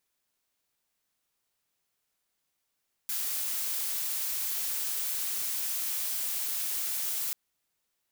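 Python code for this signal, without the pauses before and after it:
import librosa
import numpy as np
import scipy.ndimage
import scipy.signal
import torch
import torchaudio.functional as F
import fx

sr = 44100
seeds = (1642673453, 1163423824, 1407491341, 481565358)

y = fx.noise_colour(sr, seeds[0], length_s=4.24, colour='blue', level_db=-32.0)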